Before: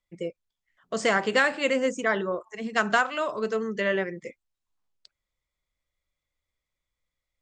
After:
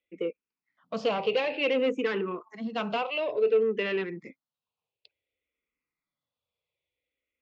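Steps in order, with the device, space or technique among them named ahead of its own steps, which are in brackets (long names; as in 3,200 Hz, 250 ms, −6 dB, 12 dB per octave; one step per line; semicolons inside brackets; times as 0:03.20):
barber-pole phaser into a guitar amplifier (frequency shifter mixed with the dry sound −0.56 Hz; soft clipping −26 dBFS, distortion −10 dB; loudspeaker in its box 110–4,300 Hz, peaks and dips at 270 Hz +6 dB, 460 Hz +10 dB, 1,700 Hz −6 dB, 2,600 Hz +10 dB)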